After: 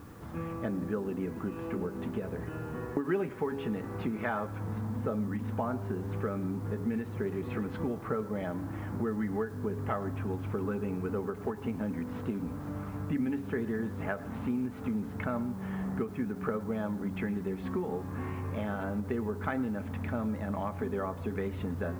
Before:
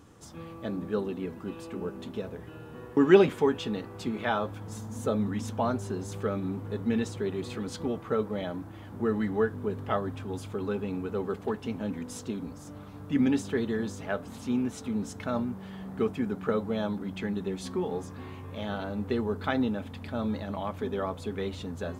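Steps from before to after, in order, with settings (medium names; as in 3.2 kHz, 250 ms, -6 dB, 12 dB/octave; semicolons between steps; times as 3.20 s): low-pass 2.2 kHz 24 dB/octave; peaking EQ 540 Hz -3 dB 1.8 oct; de-hum 137.3 Hz, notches 7; compression 4:1, threshold -39 dBFS, peak gain reduction 20 dB; word length cut 12-bit, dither triangular; on a send at -17.5 dB: reverberation RT60 0.45 s, pre-delay 101 ms; on the sum: endings held to a fixed fall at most 190 dB/s; trim +8 dB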